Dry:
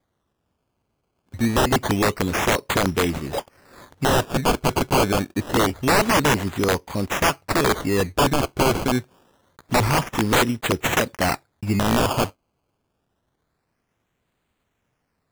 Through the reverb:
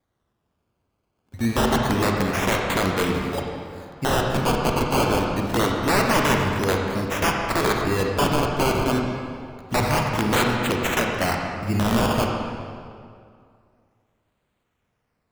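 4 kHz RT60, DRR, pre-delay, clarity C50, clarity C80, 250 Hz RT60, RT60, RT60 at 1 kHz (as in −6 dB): 1.6 s, 0.5 dB, 33 ms, 1.5 dB, 2.5 dB, 2.3 s, 2.2 s, 2.2 s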